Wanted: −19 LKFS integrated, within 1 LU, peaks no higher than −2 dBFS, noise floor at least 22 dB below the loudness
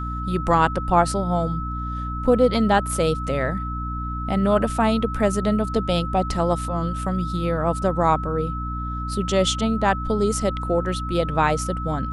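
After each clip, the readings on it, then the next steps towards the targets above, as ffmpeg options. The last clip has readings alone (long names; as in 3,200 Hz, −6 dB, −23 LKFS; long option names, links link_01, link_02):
mains hum 60 Hz; hum harmonics up to 300 Hz; level of the hum −27 dBFS; interfering tone 1,300 Hz; level of the tone −30 dBFS; integrated loudness −22.5 LKFS; sample peak −5.0 dBFS; target loudness −19.0 LKFS
→ -af "bandreject=frequency=60:width_type=h:width=6,bandreject=frequency=120:width_type=h:width=6,bandreject=frequency=180:width_type=h:width=6,bandreject=frequency=240:width_type=h:width=6,bandreject=frequency=300:width_type=h:width=6"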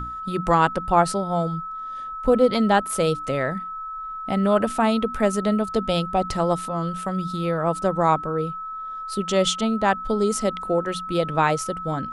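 mains hum none found; interfering tone 1,300 Hz; level of the tone −30 dBFS
→ -af "bandreject=frequency=1300:width=30"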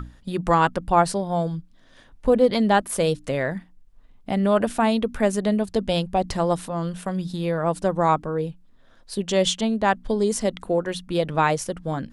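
interfering tone none found; integrated loudness −23.0 LKFS; sample peak −5.0 dBFS; target loudness −19.0 LKFS
→ -af "volume=4dB,alimiter=limit=-2dB:level=0:latency=1"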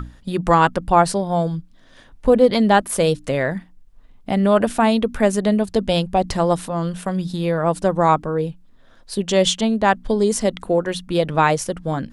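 integrated loudness −19.0 LKFS; sample peak −2.0 dBFS; background noise floor −48 dBFS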